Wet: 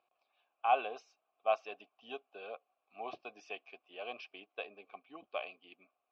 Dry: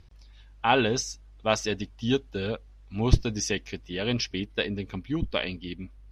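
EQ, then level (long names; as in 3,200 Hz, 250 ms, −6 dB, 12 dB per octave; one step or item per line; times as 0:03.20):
formant filter a
band-pass filter 390–3,800 Hz
+1.0 dB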